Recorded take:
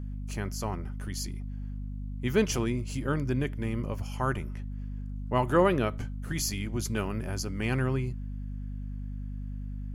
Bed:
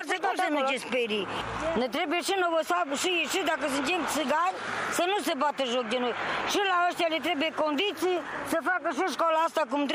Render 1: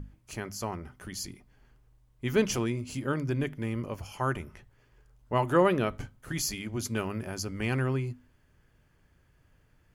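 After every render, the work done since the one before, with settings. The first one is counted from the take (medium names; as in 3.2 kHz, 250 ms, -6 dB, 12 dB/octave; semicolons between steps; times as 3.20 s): hum notches 50/100/150/200/250 Hz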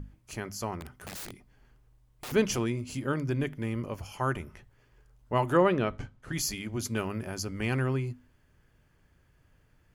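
0.80–2.32 s: integer overflow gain 35 dB; 5.57–6.33 s: distance through air 67 m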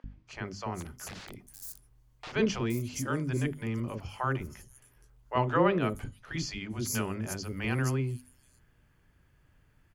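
three bands offset in time mids, lows, highs 40/470 ms, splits 510/5600 Hz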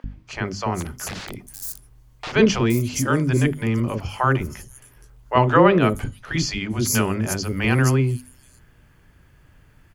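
trim +11.5 dB; peak limiter -3 dBFS, peak gain reduction 1.5 dB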